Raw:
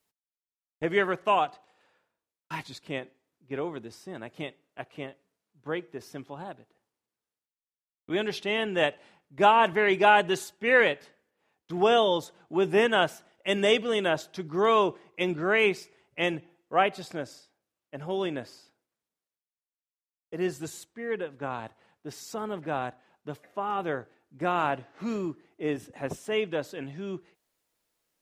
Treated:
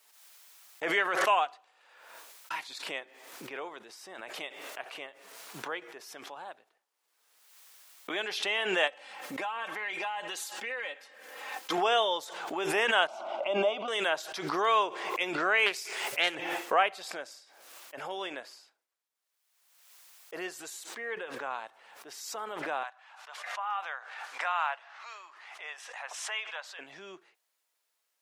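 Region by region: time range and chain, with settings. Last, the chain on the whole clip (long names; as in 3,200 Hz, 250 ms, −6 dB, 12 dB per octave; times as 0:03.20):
0:08.87–0:11.78: comb filter 3.8 ms, depth 60% + downward compressor 8 to 1, threshold −30 dBFS
0:13.07–0:13.88: low-pass filter 2,100 Hz + parametric band 580 Hz +10 dB 0.44 octaves + phaser with its sweep stopped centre 480 Hz, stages 6
0:15.66–0:16.35: high-shelf EQ 4,900 Hz +10 dB + highs frequency-modulated by the lows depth 0.25 ms
0:22.83–0:26.79: high-pass filter 780 Hz 24 dB per octave + high-frequency loss of the air 68 metres
whole clip: high-pass filter 750 Hz 12 dB per octave; background raised ahead of every attack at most 42 dB per second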